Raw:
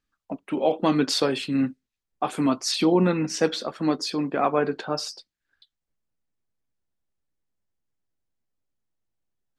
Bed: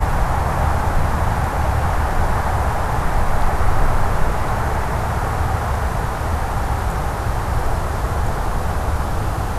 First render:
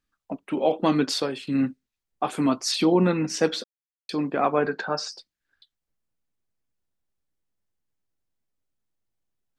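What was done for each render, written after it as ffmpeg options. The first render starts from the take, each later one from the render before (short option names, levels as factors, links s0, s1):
-filter_complex "[0:a]asettb=1/sr,asplit=3[s0][s1][s2];[s0]atrim=end=4.664[s3];[s1]atrim=start=4.66:end=5.12,asetpts=PTS-STARTPTS,afade=t=in:d=0.004:c=qsin,afade=t=out:st=0.456:d=0.004:c=qsin,highpass=150,equalizer=f=190:t=q:w=4:g=5,equalizer=f=310:t=q:w=4:g=-5,equalizer=f=890:t=q:w=4:g=3,equalizer=f=1600:t=q:w=4:g=9,equalizer=f=3100:t=q:w=4:g=-6,lowpass=f=7200:w=0.5412,lowpass=f=7200:w=1.3066[s4];[s2]atrim=start=5.116[s5];[s3][s4]acrossfade=d=0.004:c1=hsin:c2=qsin[s6];[s6][s5]acrossfade=d=0.004:c1=qsin:c2=hsin,asplit=4[s7][s8][s9][s10];[s7]atrim=end=1.47,asetpts=PTS-STARTPTS,afade=t=out:st=0.96:d=0.51:silence=0.316228[s11];[s8]atrim=start=1.47:end=3.64,asetpts=PTS-STARTPTS,afade=t=in:d=0.004:c=hsin:silence=0.316228,afade=t=out:st=2.166:d=0.004:c=hsin[s12];[s9]atrim=start=3.64:end=4.09,asetpts=PTS-STARTPTS,volume=0[s13];[s10]atrim=start=4.09,asetpts=PTS-STARTPTS,afade=t=in:d=0.004:c=hsin[s14];[s11][s12][s13][s14]concat=n=4:v=0:a=1"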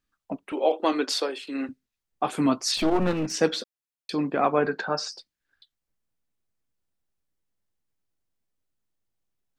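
-filter_complex "[0:a]asettb=1/sr,asplit=3[s0][s1][s2];[s0]atrim=end=0.524[s3];[s1]atrim=start=0.52:end=1.69,asetpts=PTS-STARTPTS,afade=t=in:d=0.004:c=qsin,afade=t=out:st=1.166:d=0.004:c=qsin,highpass=f=330:w=0.5412,highpass=f=330:w=1.3066[s4];[s2]atrim=start=1.686[s5];[s3][s4]acrossfade=d=0.004:c1=hsin:c2=qsin[s6];[s6][s5]acrossfade=d=0.004:c1=qsin:c2=hsin,asplit=3[s7][s8][s9];[s7]afade=t=out:st=2.76:d=0.02[s10];[s8]aeval=exprs='clip(val(0),-1,0.0355)':c=same,afade=t=in:st=2.76:d=0.02,afade=t=out:st=3.31:d=0.02[s11];[s9]afade=t=in:st=3.31:d=0.02[s12];[s10][s11][s12]amix=inputs=3:normalize=0"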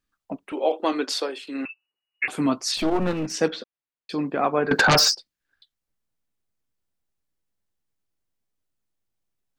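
-filter_complex "[0:a]asettb=1/sr,asplit=3[s0][s1][s2];[s0]atrim=end=1.654[s3];[s1]atrim=start=1.65:end=2.28,asetpts=PTS-STARTPTS,afade=t=in:d=0.004:c=qsin,afade=t=out:st=0.626:d=0.004:c=qsin,lowpass=f=2500:t=q:w=0.5098,lowpass=f=2500:t=q:w=0.6013,lowpass=f=2500:t=q:w=0.9,lowpass=f=2500:t=q:w=2.563,afreqshift=-2900[s4];[s2]atrim=start=2.276[s5];[s3][s4]acrossfade=d=0.004:c1=hsin:c2=qsin[s6];[s6][s5]acrossfade=d=0.004:c1=qsin:c2=hsin,asettb=1/sr,asplit=3[s7][s8][s9];[s7]atrim=end=3.484[s10];[s8]atrim=start=3.48:end=4.1,asetpts=PTS-STARTPTS,afade=t=in:d=0.004:c=qsin,afade=t=out:st=0.616:d=0.004:c=qsin,lowpass=3300[s11];[s9]atrim=start=4.096[s12];[s10][s11]acrossfade=d=0.004:c1=hsin:c2=qsin[s13];[s13][s12]acrossfade=d=0.004:c1=qsin:c2=hsin,asettb=1/sr,asplit=3[s14][s15][s16];[s14]atrim=end=4.714[s17];[s15]atrim=start=4.71:end=5.15,asetpts=PTS-STARTPTS,afade=t=in:d=0.004:c=qsin,afade=t=out:st=0.436:d=0.004:c=qsin,aeval=exprs='0.237*sin(PI/2*5.01*val(0)/0.237)':c=same[s18];[s16]atrim=start=5.146[s19];[s17][s18]acrossfade=d=0.004:c1=hsin:c2=qsin[s20];[s20][s19]acrossfade=d=0.004:c1=qsin:c2=hsin"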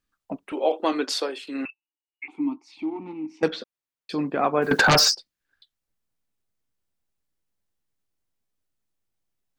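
-filter_complex "[0:a]asettb=1/sr,asplit=3[s0][s1][s2];[s0]atrim=end=1.704[s3];[s1]atrim=start=1.7:end=3.43,asetpts=PTS-STARTPTS,afade=t=in:d=0.004:c=qsin,afade=t=out:st=1.726:d=0.004:c=qsin,asplit=3[s4][s5][s6];[s4]bandpass=f=300:t=q:w=8,volume=1[s7];[s5]bandpass=f=870:t=q:w=8,volume=0.501[s8];[s6]bandpass=f=2240:t=q:w=8,volume=0.355[s9];[s7][s8][s9]amix=inputs=3:normalize=0[s10];[s2]atrim=start=3.426[s11];[s3][s10]acrossfade=d=0.004:c1=hsin:c2=qsin[s12];[s12][s11]acrossfade=d=0.004:c1=qsin:c2=hsin,asettb=1/sr,asplit=3[s13][s14][s15];[s13]atrim=end=4.624[s16];[s14]atrim=start=4.62:end=5.05,asetpts=PTS-STARTPTS,afade=t=in:d=0.004:c=qsin,afade=t=out:st=0.426:d=0.004:c=qsin,acrusher=bits=9:dc=4:mix=0:aa=0.000001[s17];[s15]atrim=start=5.046[s18];[s16][s17]acrossfade=d=0.004:c1=hsin:c2=qsin[s19];[s19][s18]acrossfade=d=0.004:c1=qsin:c2=hsin"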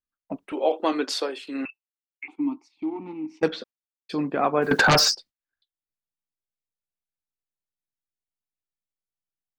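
-af "highshelf=f=4400:g=-2.5,agate=range=0.158:threshold=0.00631:ratio=16:detection=peak"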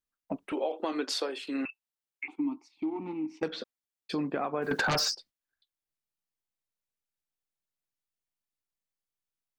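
-af "alimiter=limit=0.178:level=0:latency=1:release=141,acompressor=threshold=0.0316:ratio=2.5"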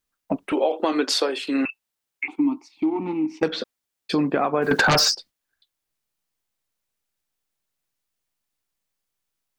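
-af "volume=3.16"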